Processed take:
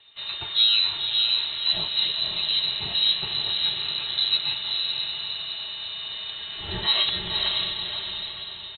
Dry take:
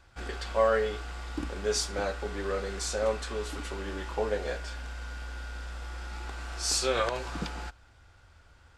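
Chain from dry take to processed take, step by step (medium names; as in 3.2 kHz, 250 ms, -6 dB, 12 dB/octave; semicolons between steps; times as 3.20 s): comb 4 ms, depth 55%; frequency shift -390 Hz; on a send: echo that smears into a reverb 537 ms, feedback 49%, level -3 dB; on the sum: frequency inversion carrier 4 kHz; trim +3 dB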